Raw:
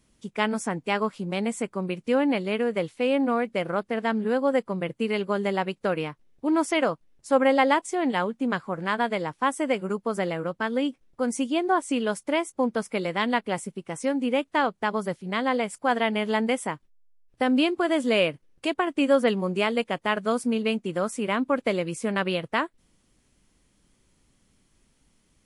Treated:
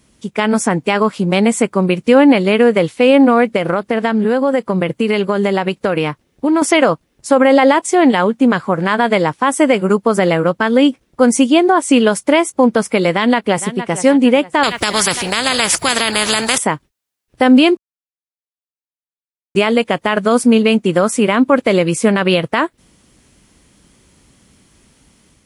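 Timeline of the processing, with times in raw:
3.56–6.62 compressor, threshold -26 dBFS
13.1–13.92 echo throw 0.46 s, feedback 45%, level -17 dB
14.63–16.58 spectral compressor 4:1
17.77–19.55 mute
whole clip: HPF 48 Hz; AGC gain up to 4 dB; maximiser +12.5 dB; gain -1 dB

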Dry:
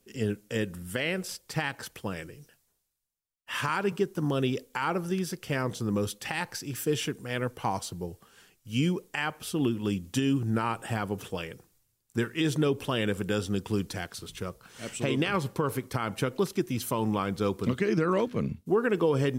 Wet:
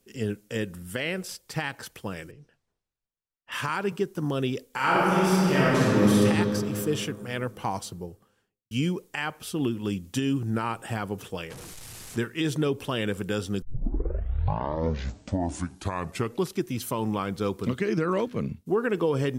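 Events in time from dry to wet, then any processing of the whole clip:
2.31–3.52 tape spacing loss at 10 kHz 22 dB
4.71–6.2 reverb throw, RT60 2.9 s, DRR -9 dB
7.81–8.71 studio fade out
11.5–12.18 delta modulation 64 kbps, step -35.5 dBFS
13.62 tape start 2.95 s

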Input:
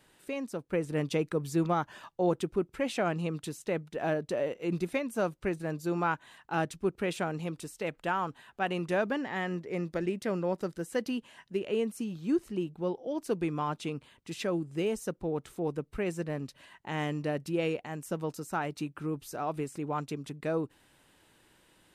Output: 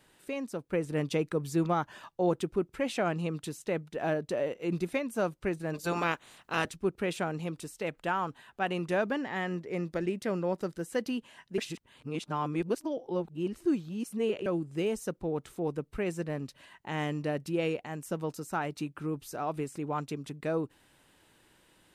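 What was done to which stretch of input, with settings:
5.73–6.69 spectral limiter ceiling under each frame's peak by 18 dB
11.58–14.46 reverse

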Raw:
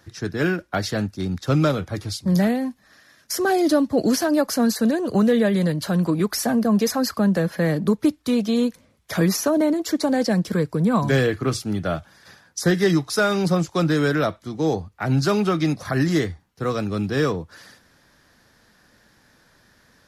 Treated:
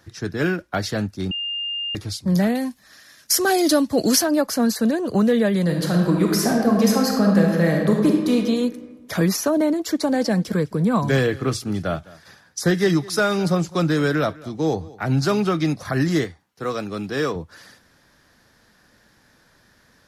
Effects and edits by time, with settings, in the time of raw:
1.31–1.95 bleep 2810 Hz -24 dBFS
2.55–4.22 high shelf 2500 Hz +10 dB
5.62–8.34 reverb throw, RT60 1.5 s, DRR 0 dB
9.91–15.48 echo 0.207 s -21 dB
16.24–17.36 HPF 280 Hz 6 dB/oct

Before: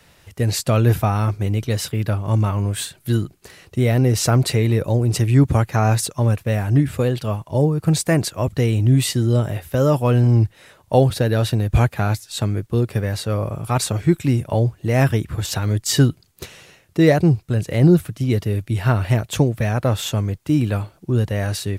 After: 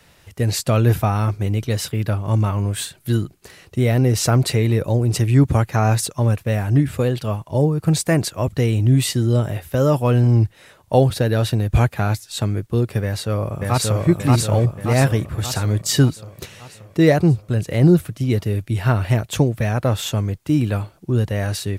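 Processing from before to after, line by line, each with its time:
13.03–14.07 echo throw 0.58 s, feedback 55%, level -1 dB

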